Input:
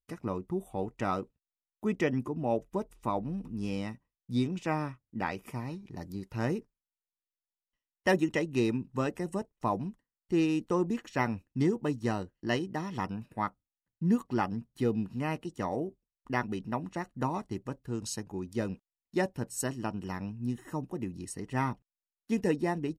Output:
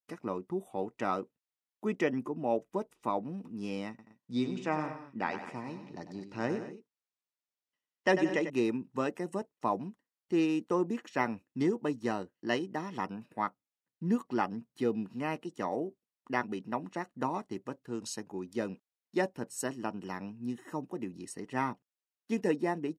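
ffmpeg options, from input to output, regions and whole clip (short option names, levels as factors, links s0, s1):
-filter_complex "[0:a]asettb=1/sr,asplit=3[s0][s1][s2];[s0]atrim=end=3.894[s3];[s1]atrim=start=3.89:end=8.5,asetpts=PTS-STARTPTS,afade=t=in:d=0.004:c=qsin,afade=t=out:st=4.606:d=0.004:c=qsin,lowpass=f=8300:w=0.5412,lowpass=f=8300:w=1.3066,aecho=1:1:97|177|214:0.316|0.168|0.158,atrim=end_sample=203301[s4];[s2]atrim=start=8.496[s5];[s3][s4]acrossfade=d=0.004:c1=hsin:c2=qsin[s6];[s6][s5]acrossfade=d=0.004:c1=qsin:c2=hsin,adynamicequalizer=threshold=0.00224:dfrequency=4000:dqfactor=1.1:tfrequency=4000:tqfactor=1.1:attack=5:release=100:ratio=0.375:range=2.5:mode=cutabove:tftype=bell,highpass=220,highshelf=f=9200:g=-8"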